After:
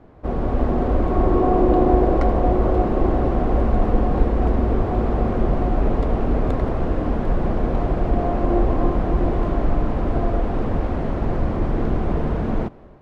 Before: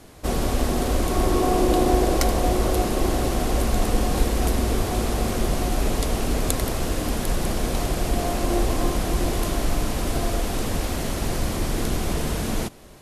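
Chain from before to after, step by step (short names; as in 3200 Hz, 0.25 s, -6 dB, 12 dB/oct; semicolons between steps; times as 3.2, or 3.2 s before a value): LPF 1200 Hz 12 dB/oct; AGC gain up to 4 dB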